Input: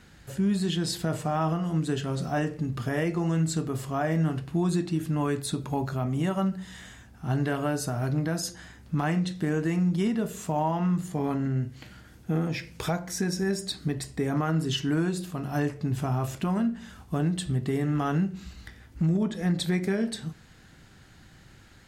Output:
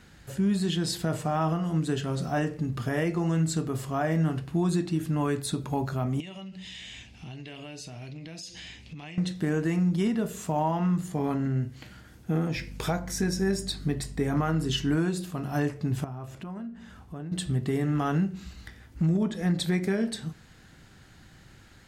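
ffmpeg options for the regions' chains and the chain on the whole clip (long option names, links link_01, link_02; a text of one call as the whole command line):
ffmpeg -i in.wav -filter_complex "[0:a]asettb=1/sr,asplit=3[link_01][link_02][link_03];[link_01]atrim=end=6.204[link_04];[link_02]atrim=start=6.2:end=9.18,asetpts=PTS-STARTPTS,afade=type=in:duration=0.004:curve=qsin,afade=type=out:start_time=2.976:duration=0.004:curve=qsin,lowpass=5500,highshelf=frequency=1900:width_type=q:width=3:gain=9.5,acompressor=threshold=-38dB:ratio=10:attack=3.2:release=140:knee=1:detection=peak[link_05];[link_03]atrim=start=9.176[link_06];[link_04][link_05]acrossfade=duration=0.004:curve1=hsin:curve2=qsin[link_07];[link_07][link_06]acrossfade=duration=0.004:curve1=qsin:curve2=hsin,asettb=1/sr,asplit=3[link_08][link_09][link_10];[link_08]atrim=end=12.564[link_11];[link_09]atrim=start=12.56:end=14.96,asetpts=PTS-STARTPTS,afade=type=in:duration=0.004:curve=qsin,afade=type=out:start_time=2.396:duration=0.004:curve=qsin,asplit=2[link_12][link_13];[link_13]adelay=21,volume=-13.5dB[link_14];[link_12][link_14]amix=inputs=2:normalize=0,atrim=end_sample=105840,aeval=exprs='val(0)+0.0112*(sin(2*PI*50*n/s)+sin(2*PI*2*50*n/s)/2+sin(2*PI*3*50*n/s)/3+sin(2*PI*4*50*n/s)/4+sin(2*PI*5*50*n/s)/5)':channel_layout=same[link_15];[link_10]atrim=start=14.956[link_16];[link_11][link_15]acrossfade=duration=0.004:curve1=hsin:curve2=qsin[link_17];[link_17][link_16]acrossfade=duration=0.004:curve1=qsin:curve2=hsin,asettb=1/sr,asplit=3[link_18][link_19][link_20];[link_18]atrim=end=16.044[link_21];[link_19]atrim=start=16.04:end=17.32,asetpts=PTS-STARTPTS,afade=type=in:duration=0.004:curve=qsin,afade=type=out:start_time=1.276:duration=0.004:curve=qsin,highshelf=frequency=3400:gain=-8,acompressor=threshold=-44dB:ratio=2:attack=3.2:release=140:knee=1:detection=peak[link_22];[link_20]atrim=start=17.316[link_23];[link_21][link_22]acrossfade=duration=0.004:curve1=hsin:curve2=qsin[link_24];[link_24][link_23]acrossfade=duration=0.004:curve1=qsin:curve2=hsin" out.wav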